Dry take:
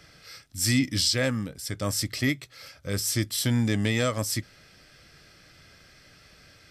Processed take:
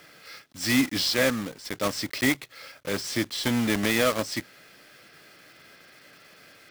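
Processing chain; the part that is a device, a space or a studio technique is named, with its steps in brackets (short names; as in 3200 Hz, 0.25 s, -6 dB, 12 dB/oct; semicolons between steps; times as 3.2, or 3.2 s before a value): early digital voice recorder (BPF 240–3800 Hz; block floating point 3-bit); gain +4 dB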